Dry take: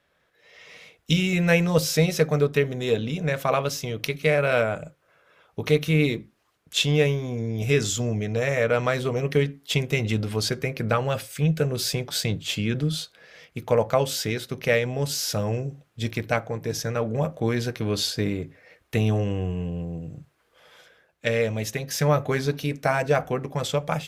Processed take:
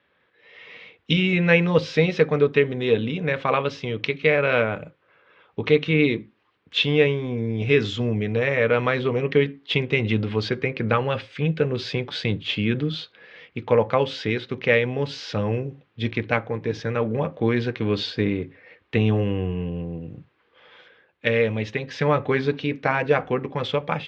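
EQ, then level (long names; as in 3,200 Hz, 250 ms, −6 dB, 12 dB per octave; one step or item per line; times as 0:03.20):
loudspeaker in its box 100–3,500 Hz, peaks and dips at 150 Hz −7 dB, 660 Hz −9 dB, 1,400 Hz −3 dB
+4.5 dB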